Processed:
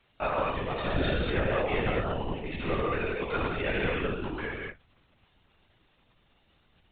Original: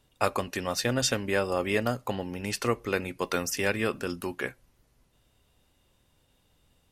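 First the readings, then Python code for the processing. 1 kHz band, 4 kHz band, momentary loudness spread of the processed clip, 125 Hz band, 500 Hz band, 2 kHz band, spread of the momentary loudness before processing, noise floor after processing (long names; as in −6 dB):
+0.5 dB, −4.5 dB, 7 LU, +2.0 dB, −0.5 dB, −0.5 dB, 8 LU, −68 dBFS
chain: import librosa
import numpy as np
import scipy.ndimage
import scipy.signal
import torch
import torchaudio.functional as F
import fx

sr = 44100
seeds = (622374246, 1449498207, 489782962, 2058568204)

y = fx.rev_gated(x, sr, seeds[0], gate_ms=270, shape='flat', drr_db=-5.0)
y = fx.dmg_crackle(y, sr, seeds[1], per_s=360.0, level_db=-44.0)
y = fx.lpc_vocoder(y, sr, seeds[2], excitation='whisper', order=16)
y = F.gain(torch.from_numpy(y), -6.0).numpy()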